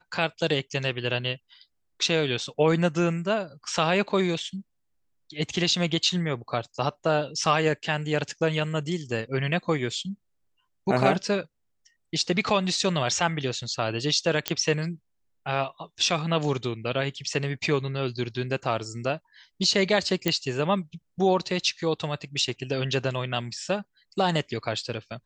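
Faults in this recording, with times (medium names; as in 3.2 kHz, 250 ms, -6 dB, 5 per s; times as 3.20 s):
14.48 s: pop -6 dBFS
20.28 s: pop -8 dBFS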